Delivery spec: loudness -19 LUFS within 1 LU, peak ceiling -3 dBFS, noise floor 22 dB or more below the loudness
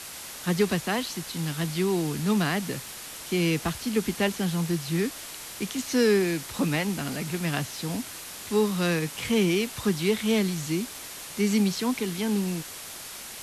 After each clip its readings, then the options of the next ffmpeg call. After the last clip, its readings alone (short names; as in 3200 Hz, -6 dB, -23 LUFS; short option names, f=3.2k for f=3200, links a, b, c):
noise floor -40 dBFS; noise floor target -50 dBFS; loudness -27.5 LUFS; peak -12.5 dBFS; loudness target -19.0 LUFS
-> -af "afftdn=nr=10:nf=-40"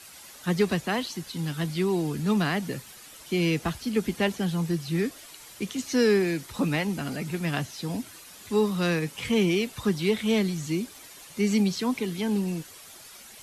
noise floor -48 dBFS; noise floor target -50 dBFS
-> -af "afftdn=nr=6:nf=-48"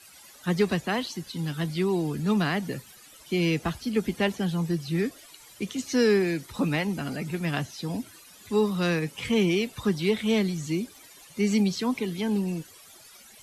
noise floor -51 dBFS; loudness -27.5 LUFS; peak -12.5 dBFS; loudness target -19.0 LUFS
-> -af "volume=8.5dB"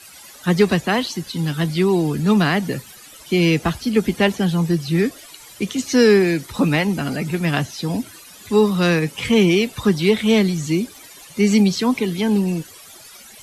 loudness -19.0 LUFS; peak -4.0 dBFS; noise floor -43 dBFS